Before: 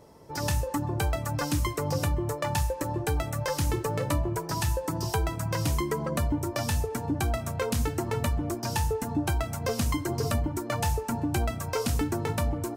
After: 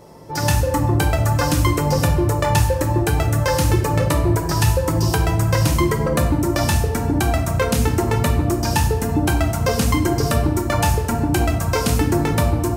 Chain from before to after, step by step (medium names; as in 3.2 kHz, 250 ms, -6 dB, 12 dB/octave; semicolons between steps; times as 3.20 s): simulated room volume 600 m³, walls mixed, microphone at 0.88 m; trim +8.5 dB